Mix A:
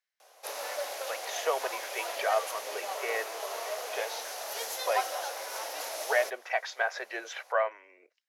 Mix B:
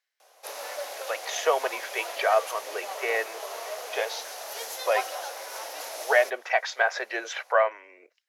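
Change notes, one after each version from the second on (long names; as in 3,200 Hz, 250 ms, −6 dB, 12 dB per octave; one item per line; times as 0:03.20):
speech +6.0 dB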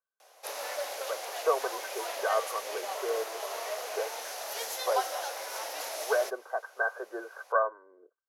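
speech: add Chebyshev low-pass with heavy ripple 1,600 Hz, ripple 9 dB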